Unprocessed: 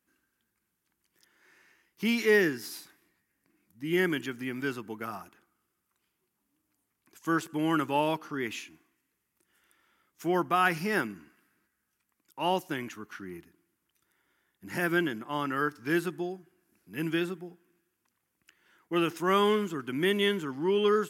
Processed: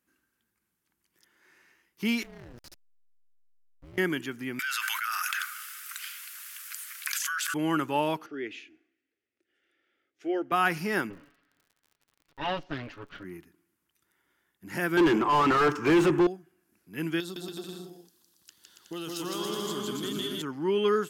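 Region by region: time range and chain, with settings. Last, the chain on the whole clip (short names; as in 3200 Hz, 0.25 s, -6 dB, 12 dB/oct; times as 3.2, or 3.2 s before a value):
2.23–3.98 AM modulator 240 Hz, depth 90% + level quantiser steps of 23 dB + backlash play -39.5 dBFS
4.59–7.54 elliptic high-pass 1400 Hz, stop band 80 dB + fast leveller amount 100%
8.26–10.52 BPF 140–3000 Hz + fixed phaser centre 420 Hz, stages 4
11.09–13.23 minimum comb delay 7.1 ms + LPF 4400 Hz 24 dB/oct + crackle 52/s -49 dBFS
14.97–16.27 ripple EQ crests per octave 0.72, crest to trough 8 dB + overdrive pedal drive 33 dB, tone 1000 Hz, clips at -12.5 dBFS
17.2–20.42 resonant high shelf 3000 Hz +9.5 dB, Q 3 + compressor 5:1, threshold -34 dBFS + bouncing-ball echo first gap 0.16 s, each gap 0.75×, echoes 7, each echo -2 dB
whole clip: dry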